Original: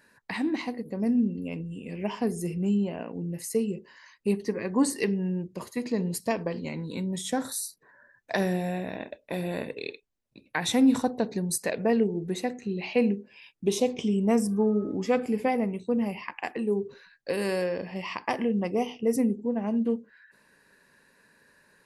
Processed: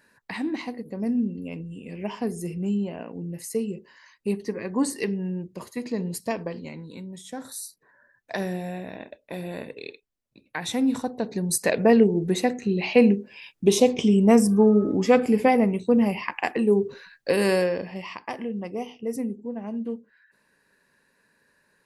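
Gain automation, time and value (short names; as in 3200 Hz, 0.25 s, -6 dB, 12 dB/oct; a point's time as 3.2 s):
6.41 s -0.5 dB
7.26 s -9.5 dB
7.63 s -2.5 dB
11.1 s -2.5 dB
11.71 s +7 dB
17.54 s +7 dB
18.23 s -4.5 dB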